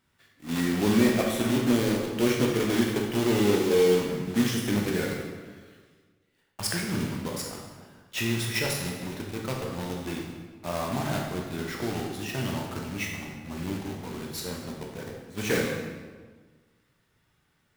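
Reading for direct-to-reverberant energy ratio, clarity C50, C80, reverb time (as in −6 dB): −1.5 dB, 2.5 dB, 4.5 dB, 1.5 s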